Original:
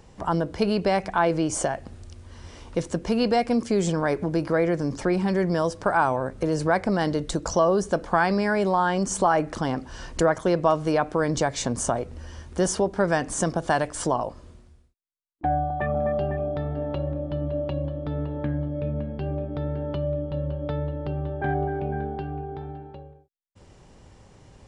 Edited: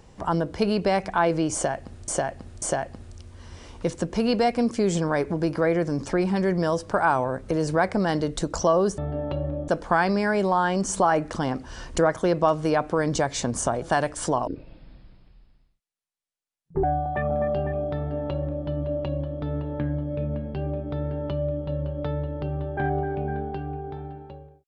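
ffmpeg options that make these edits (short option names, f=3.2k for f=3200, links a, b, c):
-filter_complex "[0:a]asplit=8[a][b][c][d][e][f][g][h];[a]atrim=end=2.082[i];[b]atrim=start=1.538:end=2.082[j];[c]atrim=start=1.538:end=7.902[k];[d]atrim=start=16.608:end=17.312[l];[e]atrim=start=7.898:end=12.042[m];[f]atrim=start=13.598:end=14.254[n];[g]atrim=start=14.25:end=15.48,asetpts=PTS-STARTPTS,asetrate=22932,aresample=44100,atrim=end_sample=104313,asetpts=PTS-STARTPTS[o];[h]atrim=start=15.476[p];[i][j]acrossfade=d=0.004:c1=hsin:c2=hsin[q];[q][k]acrossfade=d=0.004:c1=hsin:c2=hsin[r];[r][l]acrossfade=d=0.004:c1=hsin:c2=hsin[s];[s][m]acrossfade=d=0.004:c1=hsin:c2=hsin[t];[t][n]acrossfade=d=0.004:c1=hsin:c2=hsin[u];[u][o]acrossfade=d=0.004:c1=hsin:c2=hsin[v];[v][p]acrossfade=d=0.004:c1=hsin:c2=hsin"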